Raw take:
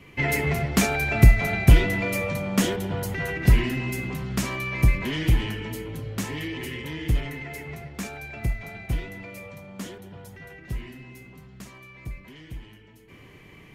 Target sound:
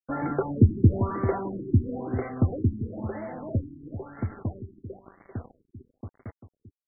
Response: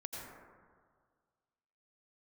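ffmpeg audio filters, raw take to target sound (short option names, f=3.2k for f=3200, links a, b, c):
-filter_complex "[0:a]aeval=exprs='val(0)+0.00251*sin(2*PI*6300*n/s)':c=same,acrossover=split=680|1100[a][b][c];[c]acompressor=threshold=-41dB:ratio=6[d];[a][b][d]amix=inputs=3:normalize=0,asetrate=88200,aresample=44100,aecho=1:1:88|176|264:0.0708|0.0354|0.0177,acrusher=bits=5:mix=0:aa=0.000001,bandreject=f=910:w=13,asplit=2[e][f];[f]aecho=0:1:393:0.299[g];[e][g]amix=inputs=2:normalize=0,afftfilt=real='re*lt(b*sr/1024,380*pow(2300/380,0.5+0.5*sin(2*PI*1*pts/sr)))':imag='im*lt(b*sr/1024,380*pow(2300/380,0.5+0.5*sin(2*PI*1*pts/sr)))':win_size=1024:overlap=0.75,volume=-3dB"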